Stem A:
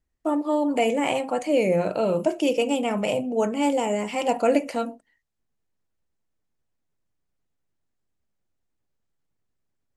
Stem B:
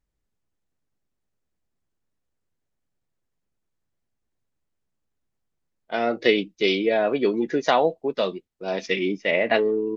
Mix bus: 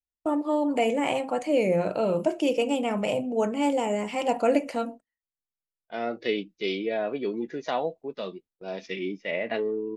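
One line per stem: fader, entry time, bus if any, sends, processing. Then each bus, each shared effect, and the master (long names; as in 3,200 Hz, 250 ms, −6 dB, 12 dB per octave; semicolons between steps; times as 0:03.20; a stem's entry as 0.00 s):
−2.0 dB, 0.00 s, no send, noise gate with hold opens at −26 dBFS; high-shelf EQ 6,600 Hz −5 dB
−6.0 dB, 0.00 s, no send, noise gate with hold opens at −41 dBFS; harmonic and percussive parts rebalanced percussive −6 dB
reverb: not used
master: no processing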